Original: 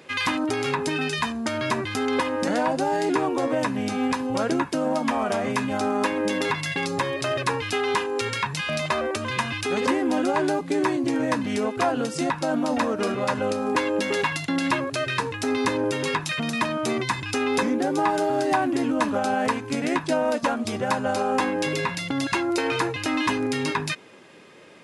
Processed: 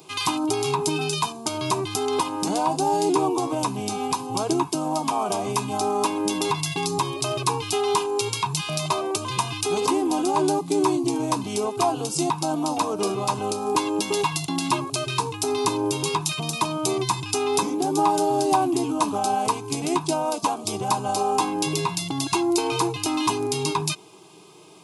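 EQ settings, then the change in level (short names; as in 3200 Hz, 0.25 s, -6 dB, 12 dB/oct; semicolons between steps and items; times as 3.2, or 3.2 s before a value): high shelf 7900 Hz +11.5 dB; fixed phaser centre 360 Hz, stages 8; notch 1400 Hz, Q 8; +3.5 dB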